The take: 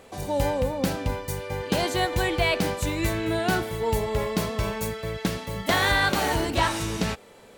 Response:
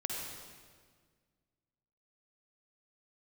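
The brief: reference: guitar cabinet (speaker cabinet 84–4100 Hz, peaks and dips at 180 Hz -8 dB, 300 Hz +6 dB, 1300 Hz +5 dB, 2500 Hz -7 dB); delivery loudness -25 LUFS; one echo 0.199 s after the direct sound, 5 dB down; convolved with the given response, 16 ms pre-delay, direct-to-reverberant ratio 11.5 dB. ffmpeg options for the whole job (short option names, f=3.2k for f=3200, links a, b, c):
-filter_complex "[0:a]aecho=1:1:199:0.562,asplit=2[a][b];[1:a]atrim=start_sample=2205,adelay=16[c];[b][c]afir=irnorm=-1:irlink=0,volume=-14.5dB[d];[a][d]amix=inputs=2:normalize=0,highpass=84,equalizer=f=180:t=q:w=4:g=-8,equalizer=f=300:t=q:w=4:g=6,equalizer=f=1.3k:t=q:w=4:g=5,equalizer=f=2.5k:t=q:w=4:g=-7,lowpass=f=4.1k:w=0.5412,lowpass=f=4.1k:w=1.3066,volume=-0.5dB"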